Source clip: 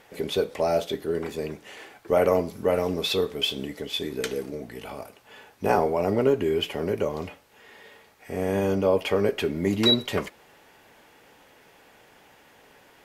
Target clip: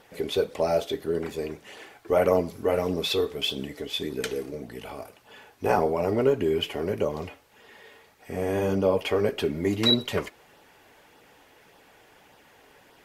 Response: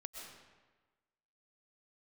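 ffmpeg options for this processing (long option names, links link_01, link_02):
-af "flanger=delay=0.2:depth=2.7:regen=-47:speed=1.7:shape=sinusoidal,volume=3dB"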